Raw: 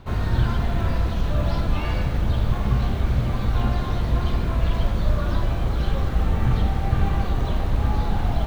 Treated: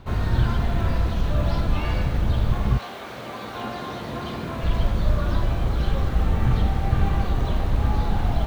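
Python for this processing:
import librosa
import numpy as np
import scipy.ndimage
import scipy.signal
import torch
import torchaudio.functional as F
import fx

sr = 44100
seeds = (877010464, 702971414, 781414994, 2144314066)

y = fx.highpass(x, sr, hz=fx.line((2.77, 570.0), (4.63, 140.0)), slope=12, at=(2.77, 4.63), fade=0.02)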